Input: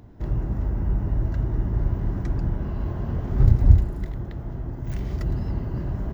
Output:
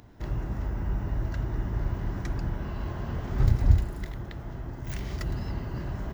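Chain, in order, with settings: tilt shelf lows -6 dB, about 920 Hz

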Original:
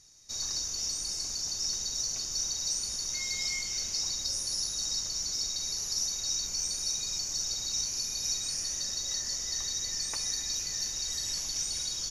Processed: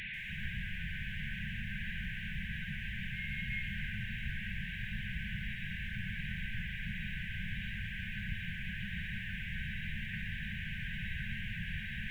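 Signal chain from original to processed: one-bit delta coder 16 kbps, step -41 dBFS; reverse; upward compressor, threshold -44 dBFS; reverse; FFT band-reject 220–1500 Hz; de-hum 191.5 Hz, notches 11; bit-crushed delay 140 ms, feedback 35%, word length 10-bit, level -12.5 dB; trim +6 dB

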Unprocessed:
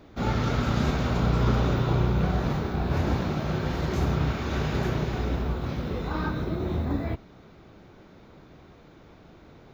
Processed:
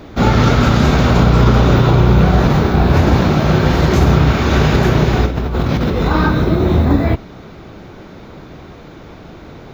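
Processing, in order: 5.26–6.08 s: compressor with a negative ratio -32 dBFS, ratio -1; loudness maximiser +16.5 dB; trim -1 dB

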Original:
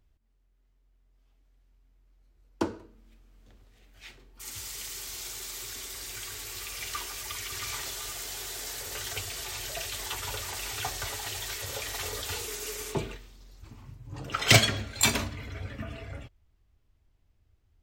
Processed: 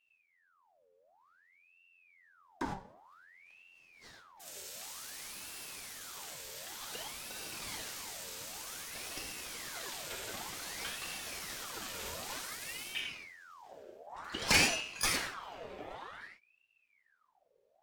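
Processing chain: gated-style reverb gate 130 ms flat, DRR -1 dB; ring modulator with a swept carrier 1.6 kHz, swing 70%, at 0.54 Hz; trim -7.5 dB

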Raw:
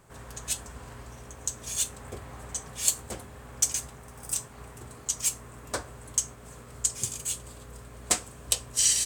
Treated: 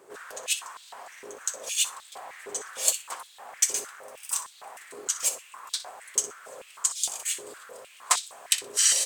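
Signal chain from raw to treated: flutter echo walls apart 10.5 m, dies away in 0.25 s; step-sequenced high-pass 6.5 Hz 400–3700 Hz; trim +1 dB

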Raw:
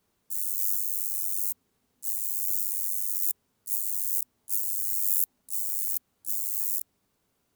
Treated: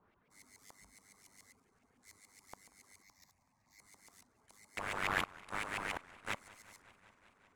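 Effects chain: reverb removal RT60 0.67 s; 3.02–3.79 s: static phaser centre 2.1 kHz, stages 8; 4.77–6.35 s: waveshaping leveller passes 3; LFO low-pass saw up 7.1 Hz 930–2500 Hz; modulated delay 189 ms, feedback 79%, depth 183 cents, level -22 dB; trim +2.5 dB

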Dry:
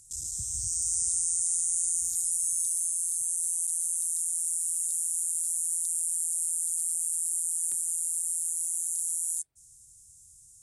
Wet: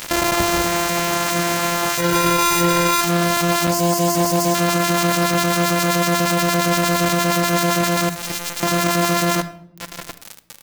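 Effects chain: sorted samples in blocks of 128 samples; reverb removal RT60 0.75 s; 8.09–8.63 s: amplifier tone stack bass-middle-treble 6-0-2; echo from a far wall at 120 m, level -27 dB; compression 16:1, threshold -37 dBFS, peak gain reduction 13.5 dB; 3.69–4.55 s: brick-wall FIR band-stop 1.1–4.2 kHz; word length cut 8-bit, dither none; 1.98–3.01 s: comb 2.1 ms, depth 88%; reverberation RT60 0.75 s, pre-delay 6 ms, DRR 11 dB; loudness maximiser +30 dB; trim -5 dB

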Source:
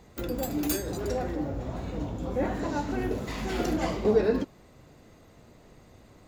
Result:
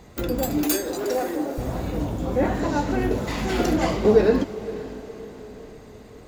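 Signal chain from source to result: 0.64–1.58 s: high-pass 260 Hz 24 dB/octave; on a send: echo that smears into a reverb 503 ms, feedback 51%, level -15 dB; on the sum: trim +6.5 dB

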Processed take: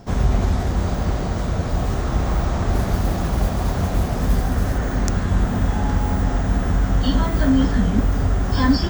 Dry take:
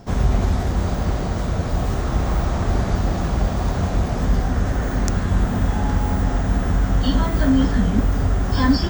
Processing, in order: 2.73–4.78 s: modulation noise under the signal 24 dB

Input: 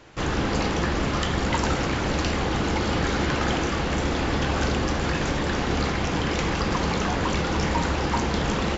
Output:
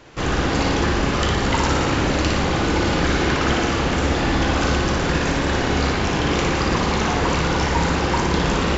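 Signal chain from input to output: flutter echo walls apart 10 m, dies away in 0.87 s; trim +3 dB

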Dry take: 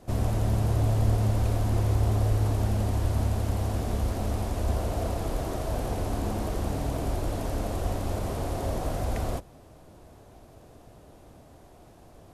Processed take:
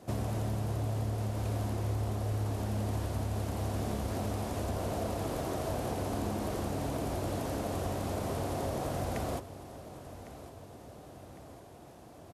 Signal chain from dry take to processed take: high-pass 96 Hz 12 dB/octave; compression, threshold -30 dBFS, peak gain reduction 8 dB; on a send: feedback delay 1105 ms, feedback 54%, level -15 dB

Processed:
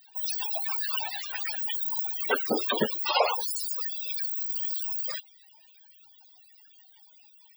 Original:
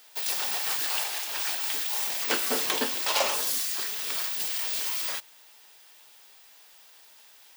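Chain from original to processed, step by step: whisper effect; loudest bins only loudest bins 32; trim +5.5 dB

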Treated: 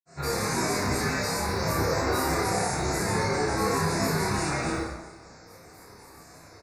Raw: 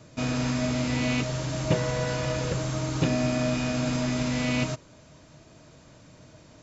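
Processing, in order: bass shelf 440 Hz -12 dB; peak limiter -25.5 dBFS, peak gain reduction 8.5 dB; granulator, pitch spread up and down by 12 st; Butterworth band-stop 3.1 kHz, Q 1.6; doubling 30 ms -2 dB; plate-style reverb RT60 1.1 s, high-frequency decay 0.75×, DRR -7.5 dB

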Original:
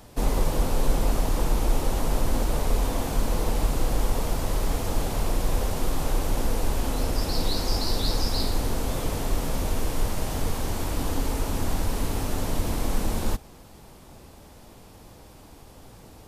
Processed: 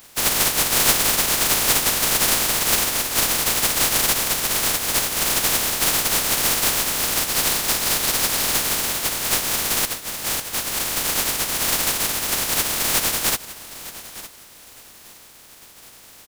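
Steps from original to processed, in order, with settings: spectral contrast reduction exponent 0.11; 9.85–10.79 s: compressor with a negative ratio -28 dBFS, ratio -0.5; feedback delay 911 ms, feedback 23%, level -16 dB; trim +1.5 dB

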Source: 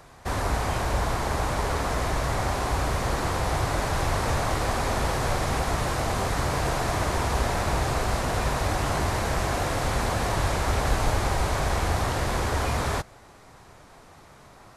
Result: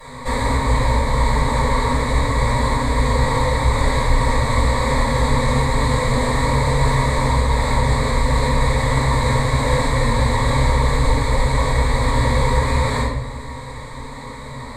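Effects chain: rippled EQ curve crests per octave 1, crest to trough 16 dB; compression 4:1, threshold -31 dBFS, peak gain reduction 13 dB; simulated room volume 320 m³, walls mixed, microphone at 6.8 m; trim -2 dB

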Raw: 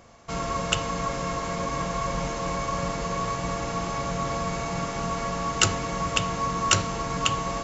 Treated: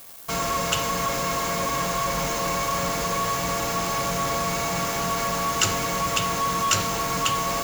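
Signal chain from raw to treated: tilt EQ +1.5 dB/octave; added noise violet -42 dBFS; in parallel at -4 dB: fuzz box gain 36 dB, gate -37 dBFS; on the sum: trim -7.5 dB

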